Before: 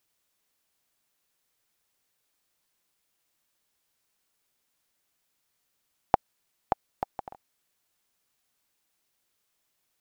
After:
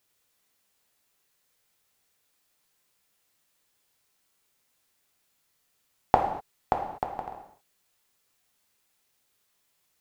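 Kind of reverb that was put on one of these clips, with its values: gated-style reverb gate 270 ms falling, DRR 1 dB; trim +1.5 dB

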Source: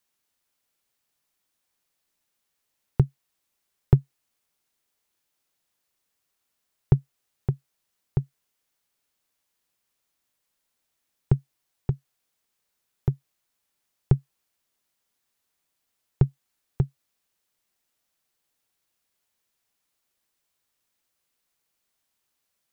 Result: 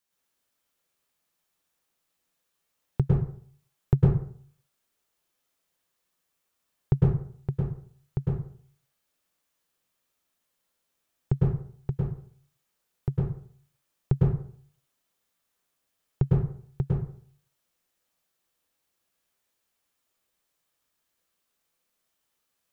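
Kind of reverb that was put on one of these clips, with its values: plate-style reverb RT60 0.54 s, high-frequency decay 0.55×, pre-delay 95 ms, DRR -5 dB; trim -5 dB

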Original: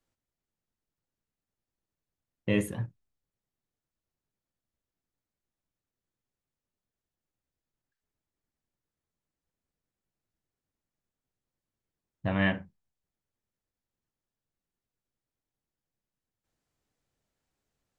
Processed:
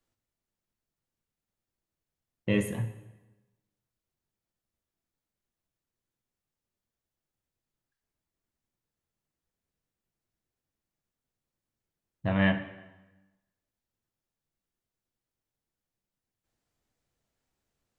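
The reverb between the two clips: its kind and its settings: plate-style reverb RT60 1.1 s, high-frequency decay 0.85×, DRR 8.5 dB

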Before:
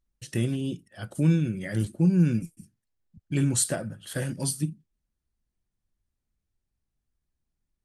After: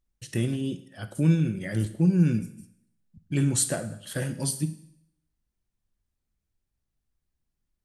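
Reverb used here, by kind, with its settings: Schroeder reverb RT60 0.71 s, DRR 12.5 dB

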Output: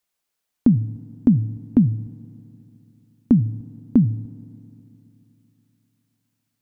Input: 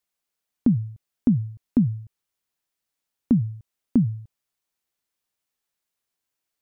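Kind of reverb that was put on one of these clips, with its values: FDN reverb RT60 3.2 s, high-frequency decay 1×, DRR 18.5 dB; trim +4 dB

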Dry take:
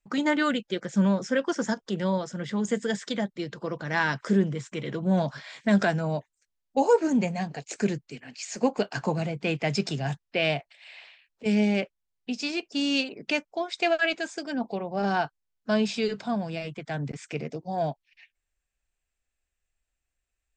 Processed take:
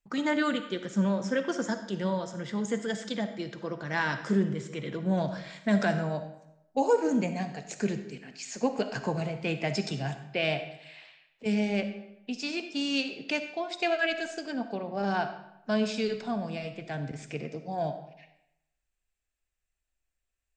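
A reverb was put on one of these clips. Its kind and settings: algorithmic reverb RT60 0.85 s, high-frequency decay 0.8×, pre-delay 15 ms, DRR 8.5 dB; trim -3.5 dB

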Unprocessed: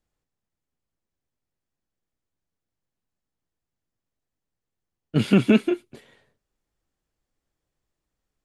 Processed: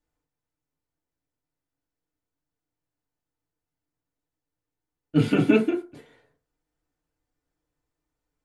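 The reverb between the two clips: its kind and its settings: FDN reverb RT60 0.33 s, low-frequency decay 0.8×, high-frequency decay 0.35×, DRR -3 dB; trim -5.5 dB

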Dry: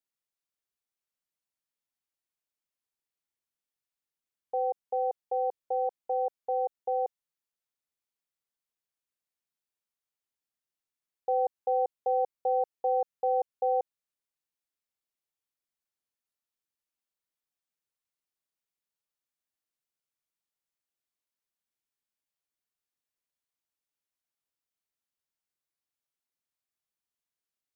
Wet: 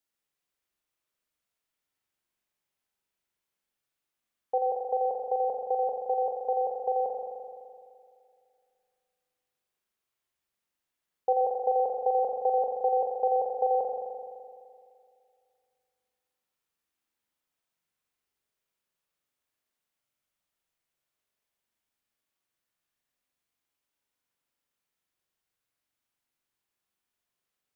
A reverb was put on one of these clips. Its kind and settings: spring tank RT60 2.3 s, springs 42 ms, chirp 80 ms, DRR -1.5 dB; trim +4 dB

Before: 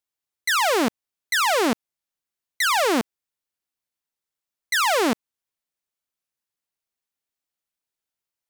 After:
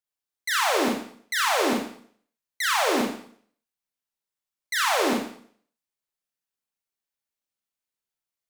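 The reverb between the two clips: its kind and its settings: Schroeder reverb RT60 0.55 s, combs from 29 ms, DRR -1 dB; trim -6 dB

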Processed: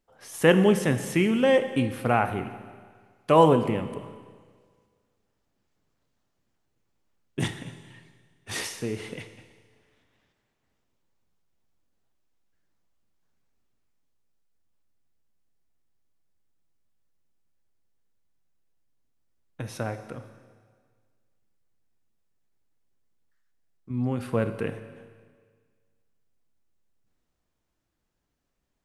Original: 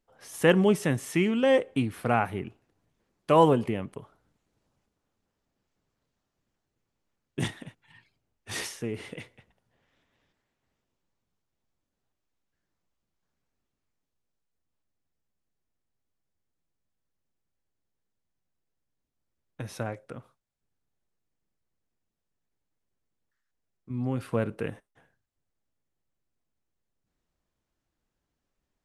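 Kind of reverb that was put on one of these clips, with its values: Schroeder reverb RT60 1.7 s, combs from 25 ms, DRR 10 dB; trim +2 dB

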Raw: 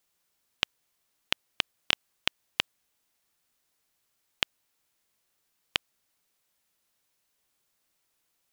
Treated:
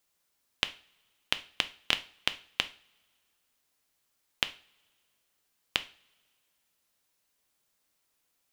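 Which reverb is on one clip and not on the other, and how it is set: two-slope reverb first 0.37 s, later 2 s, from -26 dB, DRR 10 dB; trim -1 dB

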